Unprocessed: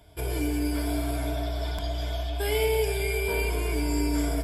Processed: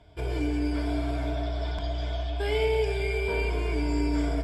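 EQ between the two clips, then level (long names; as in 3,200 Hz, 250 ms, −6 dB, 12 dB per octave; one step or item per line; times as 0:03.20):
high-frequency loss of the air 110 metres
0.0 dB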